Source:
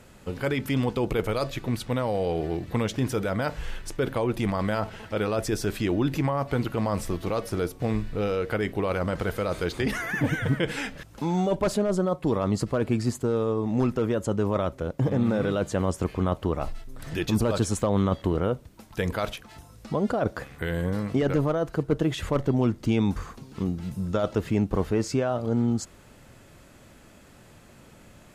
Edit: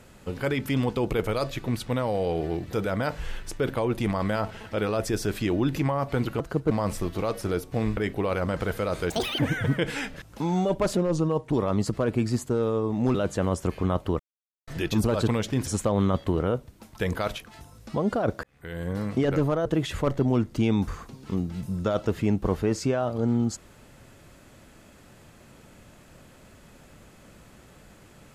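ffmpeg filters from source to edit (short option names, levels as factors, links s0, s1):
-filter_complex "[0:a]asplit=16[s0][s1][s2][s3][s4][s5][s6][s7][s8][s9][s10][s11][s12][s13][s14][s15];[s0]atrim=end=2.732[s16];[s1]atrim=start=3.118:end=6.792[s17];[s2]atrim=start=21.628:end=21.942[s18];[s3]atrim=start=6.788:end=8.052[s19];[s4]atrim=start=8.558:end=9.694[s20];[s5]atrim=start=9.69:end=10.2,asetpts=PTS-STARTPTS,asetrate=78498,aresample=44100,atrim=end_sample=12635,asetpts=PTS-STARTPTS[s21];[s6]atrim=start=10.196:end=11.784[s22];[s7]atrim=start=11.78:end=12.26,asetpts=PTS-STARTPTS,asetrate=37926,aresample=44100[s23];[s8]atrim=start=12.256:end=13.882[s24];[s9]atrim=start=15.508:end=16.56,asetpts=PTS-STARTPTS,afade=t=out:st=1.048:d=0.004:c=hsin[s25];[s10]atrim=start=16.56:end=17.04,asetpts=PTS-STARTPTS,volume=0[s26];[s11]atrim=start=17.04:end=17.642,asetpts=PTS-STARTPTS,afade=t=in:d=0.004:c=hsin[s27];[s12]atrim=start=2.728:end=3.122[s28];[s13]atrim=start=17.638:end=20.41,asetpts=PTS-STARTPTS,afade=t=out:st=2.768:d=0.004:c=hsin[s29];[s14]atrim=start=20.41:end=21.632,asetpts=PTS-STARTPTS,afade=t=in:d=0.66[s30];[s15]atrim=start=21.938[s31];[s16][s17]acrossfade=d=0.004:c1=hsin:c2=hsin[s32];[s32][s18]acrossfade=d=0.004:c1=hsin:c2=hsin[s33];[s33][s19]acrossfade=d=0.004:c1=hsin:c2=hsin[s34];[s34][s20]acrossfade=d=0.004:c1=hsin:c2=hsin[s35];[s35][s21]acrossfade=d=0.004:c1=hsin:c2=hsin[s36];[s36][s22]acrossfade=d=0.004:c1=hsin:c2=hsin[s37];[s37][s23]acrossfade=d=0.004:c1=hsin:c2=hsin[s38];[s38][s24]acrossfade=d=0.004:c1=hsin:c2=hsin[s39];[s25][s26][s27]concat=n=3:v=0:a=1[s40];[s39][s40]acrossfade=d=0.004:c1=hsin:c2=hsin[s41];[s41][s28]acrossfade=d=0.004:c1=hsin:c2=hsin[s42];[s29][s30]concat=n=2:v=0:a=1[s43];[s42][s43]acrossfade=d=0.004:c1=hsin:c2=hsin[s44];[s44][s31]acrossfade=d=0.004:c1=hsin:c2=hsin"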